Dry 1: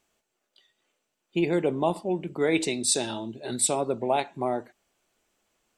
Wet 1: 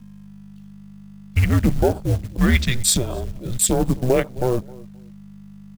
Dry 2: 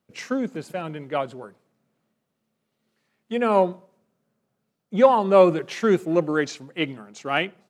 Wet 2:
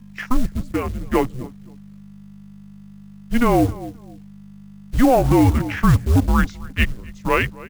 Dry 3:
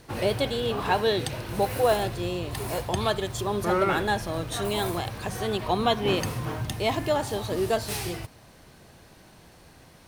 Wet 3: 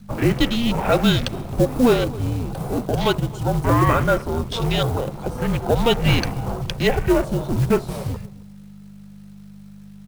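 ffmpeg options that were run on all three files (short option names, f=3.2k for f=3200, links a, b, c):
-filter_complex "[0:a]lowshelf=f=130:g=-10,afwtdn=0.0158,aeval=exprs='val(0)+0.00355*(sin(2*PI*50*n/s)+sin(2*PI*2*50*n/s)/2+sin(2*PI*3*50*n/s)/3+sin(2*PI*4*50*n/s)/4+sin(2*PI*5*50*n/s)/5)':c=same,asplit=2[a][b];[b]adelay=262,lowpass=f=1.6k:p=1,volume=-21dB,asplit=2[c][d];[d]adelay=262,lowpass=f=1.6k:p=1,volume=0.25[e];[a][c][e]amix=inputs=3:normalize=0,acrusher=bits=5:mode=log:mix=0:aa=0.000001,equalizer=f=270:t=o:w=0.36:g=6,afreqshift=-250,alimiter=level_in=13dB:limit=-1dB:release=50:level=0:latency=1,volume=-5dB"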